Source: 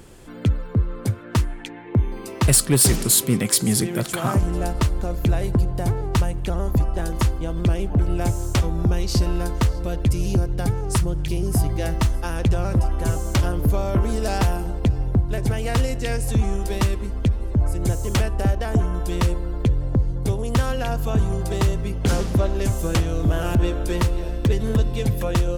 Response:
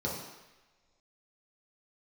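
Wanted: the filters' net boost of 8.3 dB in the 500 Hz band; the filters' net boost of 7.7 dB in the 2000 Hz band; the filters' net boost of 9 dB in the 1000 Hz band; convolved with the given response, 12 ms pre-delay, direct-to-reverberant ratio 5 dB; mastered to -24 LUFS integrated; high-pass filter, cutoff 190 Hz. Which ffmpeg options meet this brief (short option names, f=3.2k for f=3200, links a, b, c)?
-filter_complex "[0:a]highpass=190,equalizer=f=500:t=o:g=8.5,equalizer=f=1k:t=o:g=7,equalizer=f=2k:t=o:g=7,asplit=2[a][b];[1:a]atrim=start_sample=2205,adelay=12[c];[b][c]afir=irnorm=-1:irlink=0,volume=-11dB[d];[a][d]amix=inputs=2:normalize=0,volume=-5dB"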